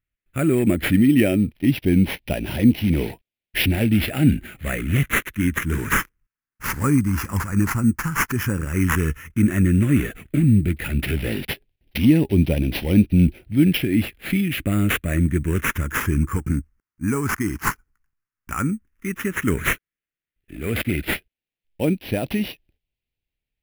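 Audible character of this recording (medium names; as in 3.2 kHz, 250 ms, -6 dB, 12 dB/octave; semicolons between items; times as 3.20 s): aliases and images of a low sample rate 8.4 kHz, jitter 0%; phasing stages 4, 0.1 Hz, lowest notch 600–1200 Hz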